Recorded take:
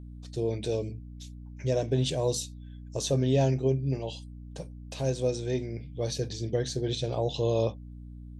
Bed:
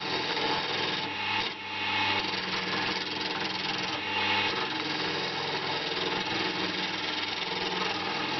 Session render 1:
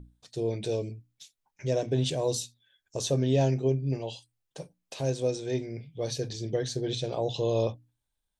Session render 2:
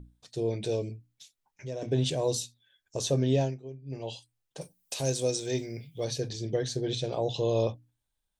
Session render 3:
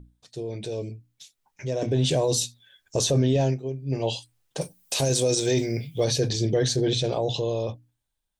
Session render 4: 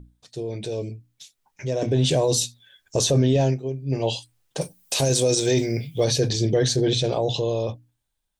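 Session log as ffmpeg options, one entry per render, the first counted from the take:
ffmpeg -i in.wav -af "bandreject=frequency=60:width_type=h:width=6,bandreject=frequency=120:width_type=h:width=6,bandreject=frequency=180:width_type=h:width=6,bandreject=frequency=240:width_type=h:width=6,bandreject=frequency=300:width_type=h:width=6" out.wav
ffmpeg -i in.wav -filter_complex "[0:a]asplit=3[link_01][link_02][link_03];[link_01]afade=type=out:start_time=0.96:duration=0.02[link_04];[link_02]acompressor=threshold=-49dB:ratio=1.5:attack=3.2:release=140:knee=1:detection=peak,afade=type=in:start_time=0.96:duration=0.02,afade=type=out:start_time=1.81:duration=0.02[link_05];[link_03]afade=type=in:start_time=1.81:duration=0.02[link_06];[link_04][link_05][link_06]amix=inputs=3:normalize=0,asettb=1/sr,asplit=3[link_07][link_08][link_09];[link_07]atrim=end=4.614[link_10];[link_08]atrim=start=4.61:end=6.05,asetpts=PTS-STARTPTS,afade=type=in:duration=0.004:curve=qsin,afade=type=out:start_time=1.436:duration=0.004:curve=qsin,aemphasis=mode=production:type=75fm[link_11];[link_09]atrim=start=6.046[link_12];[link_10][link_11]acrossfade=duration=0.004:curve1=hsin:curve2=qsin[link_13];[link_13][link_12]acrossfade=duration=0.004:curve1=qsin:curve2=hsin,asplit=3[link_14][link_15][link_16];[link_14]atrim=end=3.58,asetpts=PTS-STARTPTS,afade=type=out:start_time=3.33:duration=0.25:silence=0.149624[link_17];[link_15]atrim=start=3.58:end=3.85,asetpts=PTS-STARTPTS,volume=-16.5dB[link_18];[link_16]atrim=start=3.85,asetpts=PTS-STARTPTS,afade=type=in:duration=0.25:silence=0.149624[link_19];[link_17][link_18][link_19]concat=n=3:v=0:a=1" out.wav
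ffmpeg -i in.wav -af "alimiter=level_in=1dB:limit=-24dB:level=0:latency=1:release=25,volume=-1dB,dynaudnorm=framelen=340:gausssize=9:maxgain=11dB" out.wav
ffmpeg -i in.wav -af "volume=2.5dB" out.wav

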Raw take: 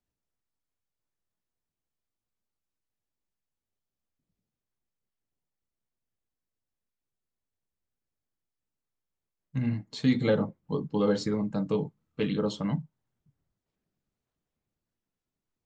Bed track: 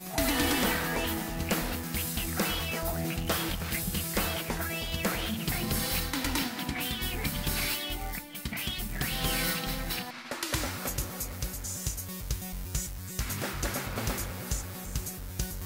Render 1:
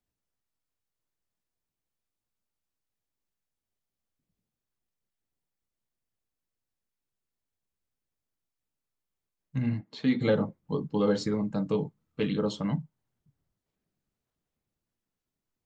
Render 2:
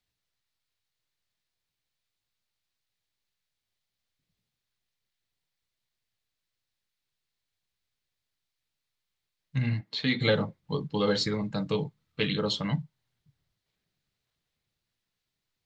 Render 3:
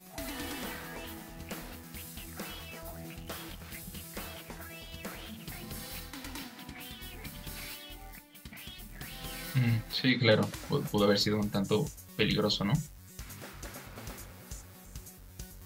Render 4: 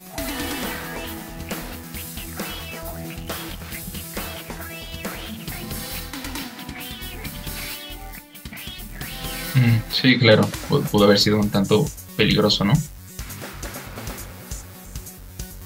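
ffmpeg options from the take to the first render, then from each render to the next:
ffmpeg -i in.wav -filter_complex "[0:a]asplit=3[link_01][link_02][link_03];[link_01]afade=type=out:start_time=9.8:duration=0.02[link_04];[link_02]highpass=190,lowpass=3600,afade=type=in:start_time=9.8:duration=0.02,afade=type=out:start_time=10.2:duration=0.02[link_05];[link_03]afade=type=in:start_time=10.2:duration=0.02[link_06];[link_04][link_05][link_06]amix=inputs=3:normalize=0" out.wav
ffmpeg -i in.wav -af "equalizer=frequency=125:width_type=o:width=1:gain=4,equalizer=frequency=250:width_type=o:width=1:gain=-5,equalizer=frequency=2000:width_type=o:width=1:gain=6,equalizer=frequency=4000:width_type=o:width=1:gain=11" out.wav
ffmpeg -i in.wav -i bed.wav -filter_complex "[1:a]volume=-12dB[link_01];[0:a][link_01]amix=inputs=2:normalize=0" out.wav
ffmpeg -i in.wav -af "volume=11.5dB,alimiter=limit=-1dB:level=0:latency=1" out.wav

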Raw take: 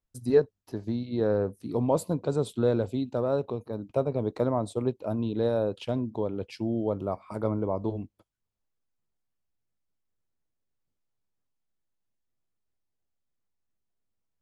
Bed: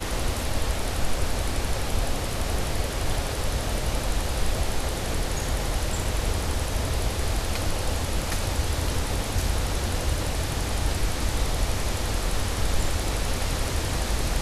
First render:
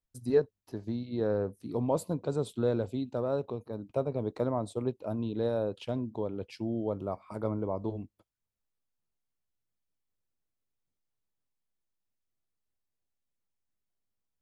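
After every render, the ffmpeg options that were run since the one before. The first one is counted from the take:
ffmpeg -i in.wav -af "volume=-4dB" out.wav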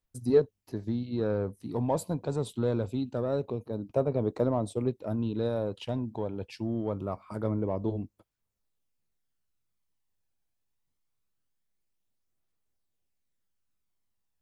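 ffmpeg -i in.wav -filter_complex "[0:a]asplit=2[link_01][link_02];[link_02]asoftclip=type=tanh:threshold=-31dB,volume=-10dB[link_03];[link_01][link_03]amix=inputs=2:normalize=0,aphaser=in_gain=1:out_gain=1:delay=1.3:decay=0.29:speed=0.24:type=triangular" out.wav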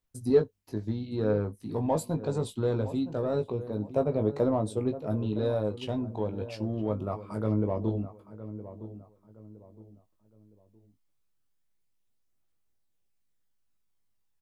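ffmpeg -i in.wav -filter_complex "[0:a]asplit=2[link_01][link_02];[link_02]adelay=19,volume=-6.5dB[link_03];[link_01][link_03]amix=inputs=2:normalize=0,asplit=2[link_04][link_05];[link_05]adelay=964,lowpass=frequency=1200:poles=1,volume=-13dB,asplit=2[link_06][link_07];[link_07]adelay=964,lowpass=frequency=1200:poles=1,volume=0.35,asplit=2[link_08][link_09];[link_09]adelay=964,lowpass=frequency=1200:poles=1,volume=0.35[link_10];[link_04][link_06][link_08][link_10]amix=inputs=4:normalize=0" out.wav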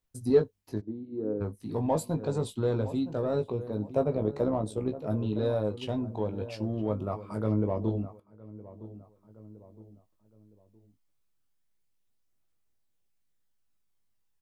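ffmpeg -i in.wav -filter_complex "[0:a]asplit=3[link_01][link_02][link_03];[link_01]afade=type=out:start_time=0.8:duration=0.02[link_04];[link_02]bandpass=frequency=320:width_type=q:width=2.2,afade=type=in:start_time=0.8:duration=0.02,afade=type=out:start_time=1.4:duration=0.02[link_05];[link_03]afade=type=in:start_time=1.4:duration=0.02[link_06];[link_04][link_05][link_06]amix=inputs=3:normalize=0,asettb=1/sr,asplit=3[link_07][link_08][link_09];[link_07]atrim=end=4.154[link_10];[link_08]atrim=start=4.15:end=4.99,asetpts=PTS-STARTPTS,afade=type=in:duration=0.004:curve=qsin,afade=type=out:start_time=0.836:duration=0.004:curve=qsin,tremolo=f=70:d=0.462[link_11];[link_09]atrim=start=4.986[link_12];[link_10][link_11]acrossfade=duration=0.004:curve1=hsin:curve2=qsin[link_13];[link_13][link_12]acrossfade=duration=0.004:curve1=qsin:curve2=hsin,asplit=2[link_14][link_15];[link_14]atrim=end=8.2,asetpts=PTS-STARTPTS,afade=type=out:start_time=8.196:duration=0.004:curve=hsin:silence=0.211349[link_16];[link_15]atrim=start=8.2,asetpts=PTS-STARTPTS,afade=type=in:duration=1.32:curve=qsin:silence=0.211349[link_17];[link_16][link_17]concat=n=2:v=0:a=1" out.wav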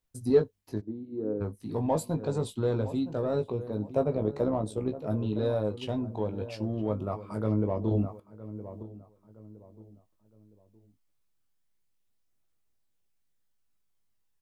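ffmpeg -i in.wav -filter_complex "[0:a]asettb=1/sr,asplit=3[link_01][link_02][link_03];[link_01]atrim=end=7.914[link_04];[link_02]atrim=start=7.91:end=8.83,asetpts=PTS-STARTPTS,afade=type=in:duration=0.004:curve=qsin,afade=type=out:start_time=0.916:duration=0.004:curve=qsin,acontrast=36[link_05];[link_03]atrim=start=8.826[link_06];[link_04][link_05]acrossfade=duration=0.004:curve1=hsin:curve2=qsin[link_07];[link_07][link_06]acrossfade=duration=0.004:curve1=qsin:curve2=hsin" out.wav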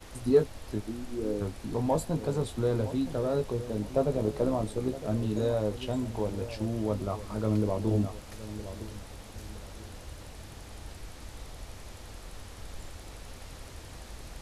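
ffmpeg -i in.wav -i bed.wav -filter_complex "[1:a]volume=-18.5dB[link_01];[0:a][link_01]amix=inputs=2:normalize=0" out.wav

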